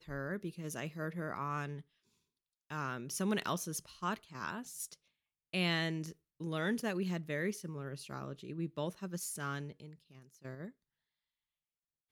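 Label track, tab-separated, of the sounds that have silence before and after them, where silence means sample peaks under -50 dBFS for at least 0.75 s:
2.700000	10.700000	sound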